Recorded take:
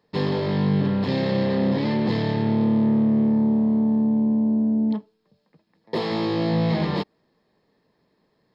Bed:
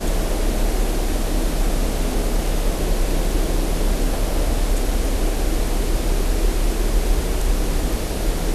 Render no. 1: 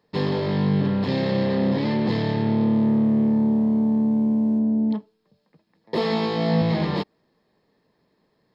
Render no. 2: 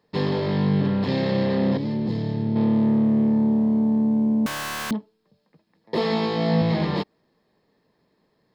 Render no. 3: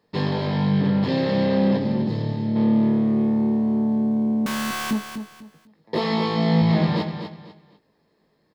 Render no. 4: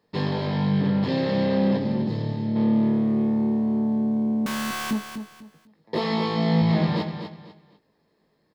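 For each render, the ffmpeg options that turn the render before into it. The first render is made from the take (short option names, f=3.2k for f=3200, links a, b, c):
-filter_complex "[0:a]asettb=1/sr,asplit=3[a][b][c];[a]atrim=end=2.734[d];[b]atrim=start=2.73:end=4.59,asetpts=PTS-STARTPTS,afade=t=in:d=0.004:c=qsin,afade=t=out:st=1.856:d=0.004:c=qsin,aeval=exprs='sgn(val(0))*max(abs(val(0))-0.00141,0)':c=same[e];[c]atrim=start=4.586[f];[d][e]acrossfade=d=0.004:c1=hsin:c2=qsin[g];[g][f]acrossfade=d=0.004:c1=qsin:c2=hsin,asettb=1/sr,asplit=3[h][i][j];[h]atrim=end=5.974[k];[i]atrim=start=5.97:end=6.62,asetpts=PTS-STARTPTS,afade=t=in:d=0.004:c=qsin,afade=t=out:st=0.646:d=0.004:c=qsin,aecho=1:1:4.5:0.73,atrim=end_sample=28665[l];[j]atrim=start=6.616[m];[k][l]acrossfade=d=0.004:c1=hsin:c2=qsin[n];[n][m]acrossfade=d=0.004:c1=qsin:c2=hsin"
-filter_complex "[0:a]asettb=1/sr,asplit=3[a][b][c];[a]atrim=end=1.774[d];[b]atrim=start=1.77:end=2.56,asetpts=PTS-STARTPTS,afade=t=in:d=0.004:c=qsin,afade=t=out:st=0.786:d=0.004:c=qsin,equalizer=f=1.7k:w=0.3:g=-12.5[e];[c]atrim=start=2.556[f];[d][e]acrossfade=d=0.004:c1=hsin:c2=qsin[g];[g][f]acrossfade=d=0.004:c1=qsin:c2=hsin,asettb=1/sr,asplit=3[h][i][j];[h]atrim=end=4.464[k];[i]atrim=start=4.46:end=4.91,asetpts=PTS-STARTPTS,afade=t=in:d=0.004:c=qsin,afade=t=out:st=0.446:d=0.004:c=qsin,aeval=exprs='(mod(15.8*val(0)+1,2)-1)/15.8':c=same[l];[j]atrim=start=4.906[m];[k][l]acrossfade=d=0.004:c1=hsin:c2=qsin[n];[n][m]acrossfade=d=0.004:c1=qsin:c2=hsin"
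-filter_complex "[0:a]asplit=2[a][b];[b]adelay=19,volume=-8dB[c];[a][c]amix=inputs=2:normalize=0,aecho=1:1:248|496|744:0.376|0.105|0.0295"
-af "volume=-2dB"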